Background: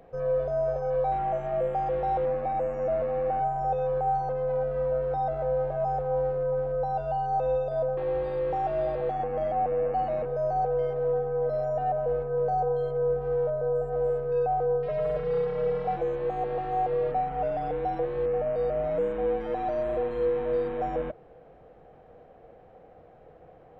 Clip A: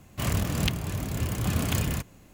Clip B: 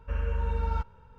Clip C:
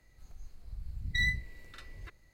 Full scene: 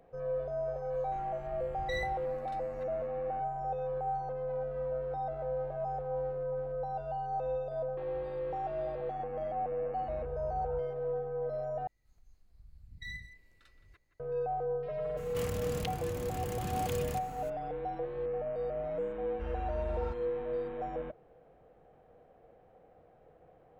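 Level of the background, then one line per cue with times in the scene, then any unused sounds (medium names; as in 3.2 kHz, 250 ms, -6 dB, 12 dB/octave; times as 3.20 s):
background -8 dB
0.74 s: add C -8.5 dB
9.98 s: add B -15.5 dB + low-pass 1.1 kHz
11.87 s: replace with C -14 dB + speakerphone echo 170 ms, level -11 dB
15.17 s: add A -13 dB + level flattener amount 50%
19.31 s: add B -9.5 dB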